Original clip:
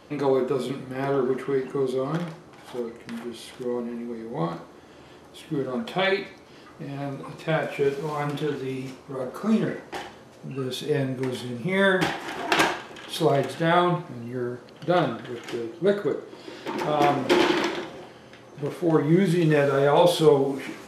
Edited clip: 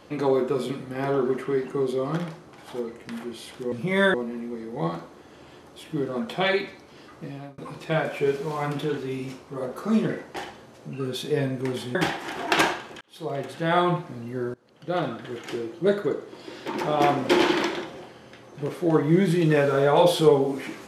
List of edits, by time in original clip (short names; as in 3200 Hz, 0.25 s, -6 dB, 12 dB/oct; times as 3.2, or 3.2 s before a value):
6.83–7.16 fade out
11.53–11.95 move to 3.72
13.01–13.89 fade in
14.54–15.32 fade in, from -23.5 dB